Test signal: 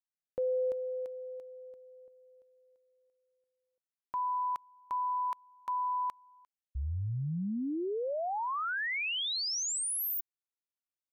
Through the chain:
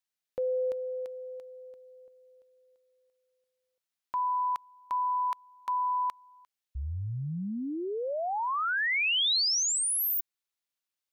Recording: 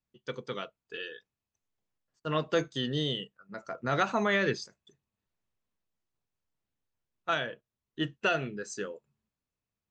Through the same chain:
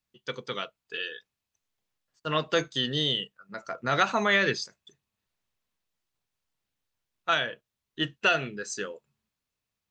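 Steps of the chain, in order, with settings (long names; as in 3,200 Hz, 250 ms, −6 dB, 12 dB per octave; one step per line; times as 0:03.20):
drawn EQ curve 340 Hz 0 dB, 3,900 Hz +8 dB, 8,100 Hz +5 dB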